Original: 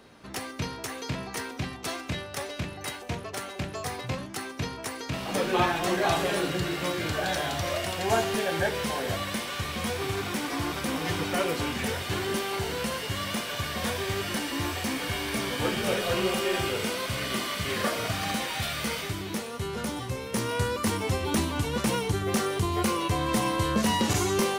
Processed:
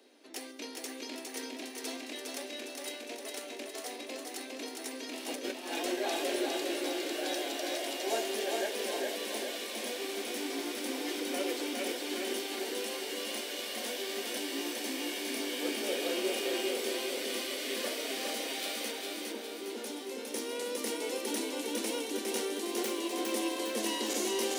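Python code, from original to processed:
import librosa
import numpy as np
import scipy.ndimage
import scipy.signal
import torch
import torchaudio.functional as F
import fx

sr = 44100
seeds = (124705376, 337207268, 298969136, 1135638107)

y = fx.self_delay(x, sr, depth_ms=0.092, at=(22.65, 23.2))
y = scipy.signal.sosfilt(scipy.signal.butter(12, 250.0, 'highpass', fs=sr, output='sos'), y)
y = fx.peak_eq(y, sr, hz=1200.0, db=-13.0, octaves=1.1)
y = fx.over_compress(y, sr, threshold_db=-34.0, ratio=-0.5, at=(5.28, 5.84))
y = fx.brickwall_lowpass(y, sr, high_hz=1700.0, at=(18.91, 19.7))
y = fx.echo_feedback(y, sr, ms=408, feedback_pct=55, wet_db=-3)
y = F.gain(torch.from_numpy(y), -4.5).numpy()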